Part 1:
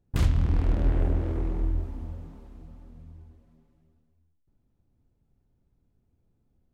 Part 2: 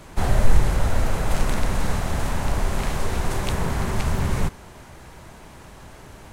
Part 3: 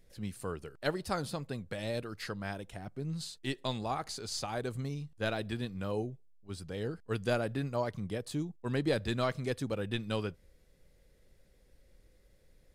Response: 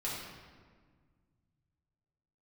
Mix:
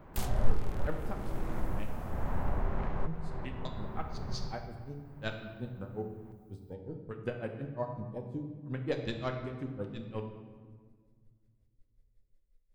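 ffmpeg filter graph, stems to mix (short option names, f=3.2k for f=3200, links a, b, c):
-filter_complex "[0:a]aemphasis=mode=production:type=riaa,volume=8.5dB,afade=t=in:st=0.97:d=0.58:silence=0.421697,afade=t=out:st=2.39:d=0.42:silence=0.223872,afade=t=in:st=3.63:d=0.32:silence=0.237137[a];[1:a]lowpass=1.4k,volume=-9dB,asplit=2[b][c];[c]volume=-19dB[d];[2:a]afwtdn=0.00708,aeval=exprs='val(0)*pow(10,-30*(0.5-0.5*cos(2*PI*5.5*n/s))/20)':c=same,volume=-4dB,asplit=3[e][f][g];[e]atrim=end=1.94,asetpts=PTS-STARTPTS,afade=t=out:st=1.936:d=0.004:c=hsin[h];[f]atrim=start=1.94:end=2.81,asetpts=PTS-STARTPTS,volume=0[i];[g]atrim=start=2.81,asetpts=PTS-STARTPTS,afade=t=in:d=0.004:c=hsin[j];[h][i][j]concat=n=3:v=0:a=1,asplit=3[k][l][m];[l]volume=-3.5dB[n];[m]apad=whole_len=278719[o];[b][o]sidechaincompress=threshold=-54dB:ratio=8:attack=33:release=581[p];[3:a]atrim=start_sample=2205[q];[d][n]amix=inputs=2:normalize=0[r];[r][q]afir=irnorm=-1:irlink=0[s];[a][p][k][s]amix=inputs=4:normalize=0"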